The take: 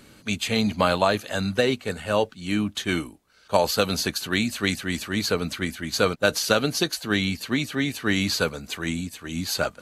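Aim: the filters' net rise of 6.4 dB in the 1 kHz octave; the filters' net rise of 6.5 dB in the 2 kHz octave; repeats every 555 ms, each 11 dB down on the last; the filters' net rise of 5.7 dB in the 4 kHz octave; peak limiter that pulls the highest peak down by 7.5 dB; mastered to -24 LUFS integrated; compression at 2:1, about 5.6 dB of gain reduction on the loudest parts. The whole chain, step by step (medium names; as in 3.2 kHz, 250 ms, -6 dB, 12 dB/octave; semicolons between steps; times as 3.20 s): peaking EQ 1 kHz +6.5 dB; peaking EQ 2 kHz +5 dB; peaking EQ 4 kHz +5 dB; compression 2:1, threshold -21 dBFS; peak limiter -12 dBFS; feedback delay 555 ms, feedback 28%, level -11 dB; trim +1 dB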